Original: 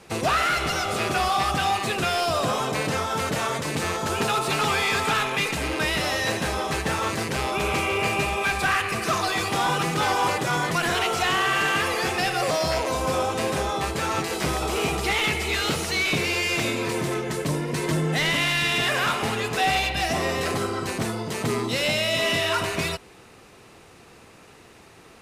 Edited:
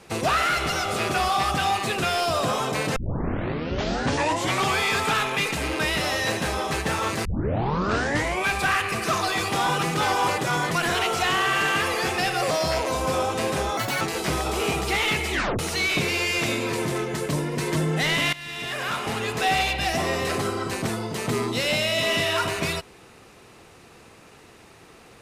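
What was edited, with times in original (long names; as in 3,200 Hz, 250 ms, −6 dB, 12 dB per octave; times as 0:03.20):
0:02.96: tape start 1.83 s
0:07.25: tape start 1.22 s
0:13.77–0:14.17: play speed 167%
0:15.47: tape stop 0.28 s
0:18.49–0:19.54: fade in, from −18 dB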